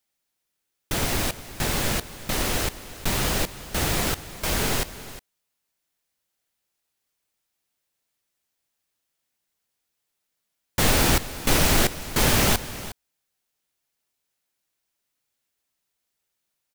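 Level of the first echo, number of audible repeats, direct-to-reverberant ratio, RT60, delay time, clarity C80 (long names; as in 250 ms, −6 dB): −15.5 dB, 1, no reverb audible, no reverb audible, 359 ms, no reverb audible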